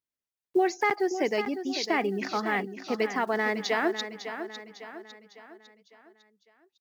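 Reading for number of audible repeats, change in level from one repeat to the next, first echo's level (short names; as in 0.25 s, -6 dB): 4, -6.5 dB, -10.0 dB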